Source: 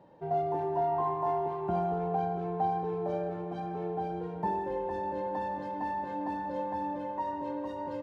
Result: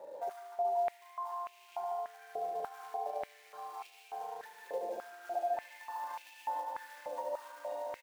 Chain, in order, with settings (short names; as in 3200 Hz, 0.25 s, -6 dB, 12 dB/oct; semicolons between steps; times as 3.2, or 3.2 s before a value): random spectral dropouts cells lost 24%; 1.32–2.27 high shelf 3000 Hz +7.5 dB; 4.81–5.54 frequency shift -180 Hz; short-mantissa float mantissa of 2-bit; doubler 36 ms -6 dB; feedback echo 73 ms, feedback 58%, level -4.5 dB; compressor 12:1, threshold -43 dBFS, peak gain reduction 23 dB; on a send: darkening echo 0.15 s, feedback 67%, low-pass 3200 Hz, level -7 dB; on the sum: stepped high-pass 3.4 Hz 550–2600 Hz; gain +1.5 dB